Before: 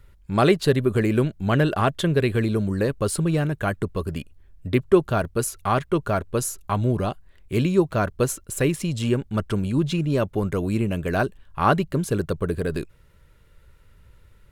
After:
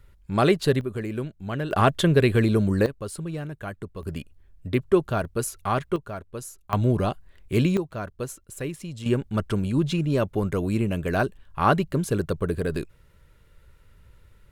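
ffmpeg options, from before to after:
-af "asetnsamples=n=441:p=0,asendcmd='0.81 volume volume -9.5dB;1.71 volume volume 2dB;2.86 volume volume -10dB;4.03 volume volume -3dB;5.96 volume volume -11.5dB;6.73 volume volume 0.5dB;7.77 volume volume -10dB;9.06 volume volume -1dB',volume=0.794"

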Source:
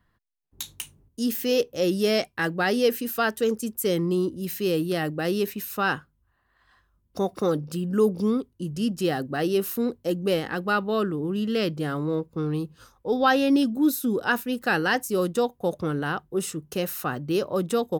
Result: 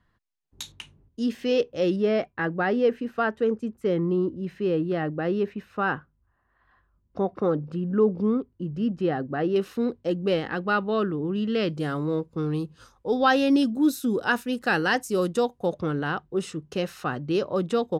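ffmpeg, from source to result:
-af "asetnsamples=n=441:p=0,asendcmd='0.72 lowpass f 3400;1.96 lowpass f 1800;9.56 lowpass f 3800;11.69 lowpass f 8600;15.66 lowpass f 4900',lowpass=7400"

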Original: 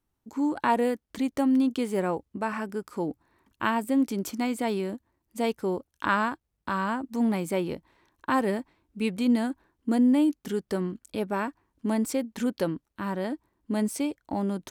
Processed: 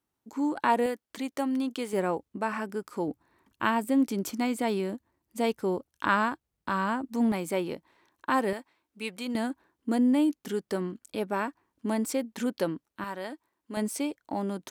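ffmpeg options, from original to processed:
-af "asetnsamples=n=441:p=0,asendcmd='0.86 highpass f 500;1.93 highpass f 170;3.08 highpass f 78;7.32 highpass f 260;8.53 highpass f 910;9.35 highpass f 220;13.04 highpass f 840;13.77 highpass f 260',highpass=f=220:p=1"

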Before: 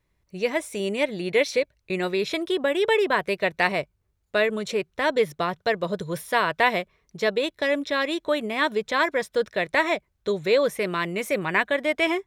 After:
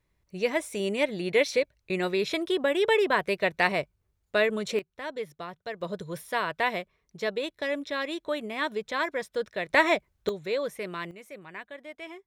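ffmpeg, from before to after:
-af "asetnsamples=n=441:p=0,asendcmd='4.79 volume volume -13dB;5.81 volume volume -6.5dB;9.7 volume volume 0.5dB;10.29 volume volume -9dB;11.11 volume volume -19dB',volume=0.794"

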